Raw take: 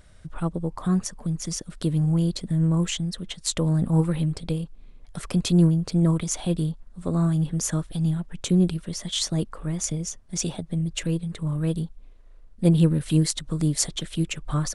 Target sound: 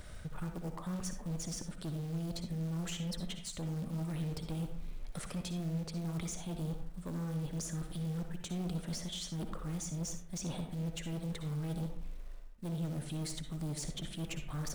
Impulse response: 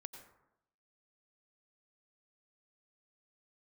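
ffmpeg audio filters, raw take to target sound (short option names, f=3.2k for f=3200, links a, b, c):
-filter_complex "[0:a]areverse,acompressor=threshold=-34dB:ratio=12,areverse,acrusher=bits=6:mode=log:mix=0:aa=0.000001,acrossover=split=410[a][b];[b]acompressor=threshold=-43dB:ratio=6[c];[a][c]amix=inputs=2:normalize=0,asoftclip=type=tanh:threshold=-39dB[d];[1:a]atrim=start_sample=2205,asetrate=70560,aresample=44100[e];[d][e]afir=irnorm=-1:irlink=0,volume=14.5dB"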